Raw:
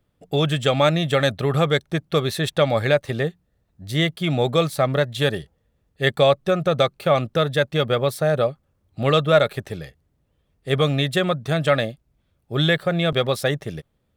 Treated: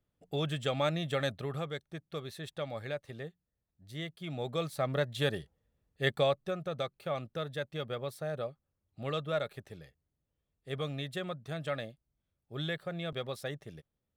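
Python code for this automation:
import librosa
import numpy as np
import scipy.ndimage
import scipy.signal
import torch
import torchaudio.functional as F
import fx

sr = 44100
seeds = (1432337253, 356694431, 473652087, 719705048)

y = fx.gain(x, sr, db=fx.line((1.3, -13.0), (1.71, -19.5), (4.13, -19.5), (5.07, -10.0), (6.1, -10.0), (6.63, -17.0)))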